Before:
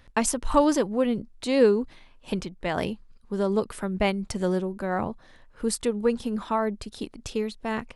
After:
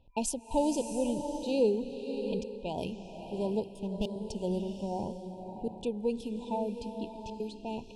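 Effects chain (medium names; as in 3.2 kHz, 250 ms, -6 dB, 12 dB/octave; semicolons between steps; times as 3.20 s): 3.67–4.15 s: comb filter that takes the minimum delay 0.59 ms; level-controlled noise filter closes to 2.3 kHz, open at -22 dBFS; trance gate "xxxx.xxx.xxxxxxx" 148 bpm -60 dB; FFT band-reject 1–2.4 kHz; swelling reverb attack 680 ms, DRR 6 dB; trim -7.5 dB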